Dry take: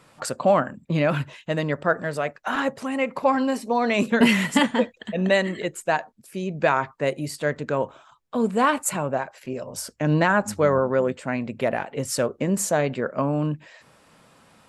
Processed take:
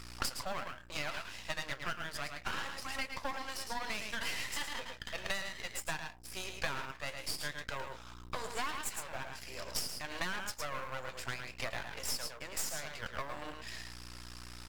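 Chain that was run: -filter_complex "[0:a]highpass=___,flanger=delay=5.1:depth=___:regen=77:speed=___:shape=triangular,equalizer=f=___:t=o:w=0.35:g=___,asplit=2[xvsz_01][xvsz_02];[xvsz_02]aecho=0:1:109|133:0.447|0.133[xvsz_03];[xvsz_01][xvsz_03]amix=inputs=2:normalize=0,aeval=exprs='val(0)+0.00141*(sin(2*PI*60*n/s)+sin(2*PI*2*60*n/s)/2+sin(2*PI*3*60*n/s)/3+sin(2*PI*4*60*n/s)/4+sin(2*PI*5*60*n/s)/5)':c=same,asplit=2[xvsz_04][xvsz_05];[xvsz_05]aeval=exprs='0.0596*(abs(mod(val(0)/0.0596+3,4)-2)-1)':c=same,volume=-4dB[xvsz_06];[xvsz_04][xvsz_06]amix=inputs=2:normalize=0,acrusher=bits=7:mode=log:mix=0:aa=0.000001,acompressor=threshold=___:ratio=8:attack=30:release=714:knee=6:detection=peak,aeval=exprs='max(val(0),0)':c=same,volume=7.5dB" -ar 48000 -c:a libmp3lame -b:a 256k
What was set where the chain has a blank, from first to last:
1200, 7.2, 0.66, 5100, 13, -40dB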